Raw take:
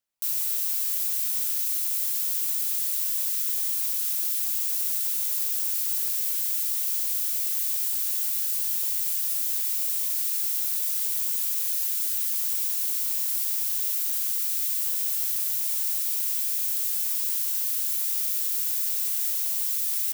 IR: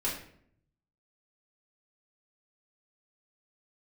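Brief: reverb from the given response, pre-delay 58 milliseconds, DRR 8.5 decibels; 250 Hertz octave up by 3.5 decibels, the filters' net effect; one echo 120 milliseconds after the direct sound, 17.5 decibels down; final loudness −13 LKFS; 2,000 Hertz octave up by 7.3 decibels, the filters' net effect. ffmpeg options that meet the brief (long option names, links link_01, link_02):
-filter_complex "[0:a]equalizer=frequency=250:width_type=o:gain=4.5,equalizer=frequency=2000:width_type=o:gain=9,aecho=1:1:120:0.133,asplit=2[link_01][link_02];[1:a]atrim=start_sample=2205,adelay=58[link_03];[link_02][link_03]afir=irnorm=-1:irlink=0,volume=-14.5dB[link_04];[link_01][link_04]amix=inputs=2:normalize=0,volume=10dB"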